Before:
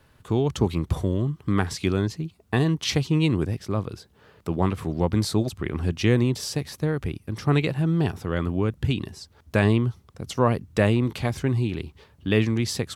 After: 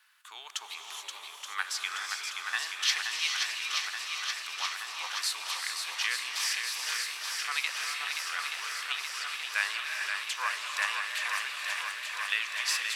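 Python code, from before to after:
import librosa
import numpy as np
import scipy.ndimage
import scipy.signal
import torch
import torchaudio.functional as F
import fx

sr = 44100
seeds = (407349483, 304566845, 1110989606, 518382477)

y = scipy.signal.sosfilt(scipy.signal.butter(4, 1300.0, 'highpass', fs=sr, output='sos'), x)
y = fx.echo_swing(y, sr, ms=877, ratio=1.5, feedback_pct=73, wet_db=-5.5)
y = fx.rev_gated(y, sr, seeds[0], gate_ms=460, shape='rising', drr_db=4.0)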